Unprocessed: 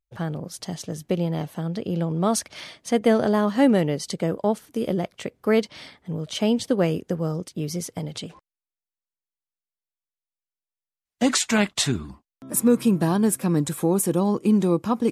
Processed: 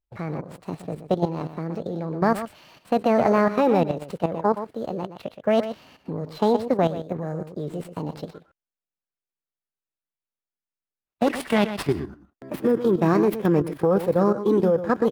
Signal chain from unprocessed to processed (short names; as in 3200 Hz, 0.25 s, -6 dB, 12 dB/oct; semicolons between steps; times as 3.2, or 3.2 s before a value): median filter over 9 samples; on a send: echo 0.121 s -10.5 dB; on the sum: formant shift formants +5 st; high shelf 2800 Hz -8 dB; level quantiser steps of 11 dB; gain +4 dB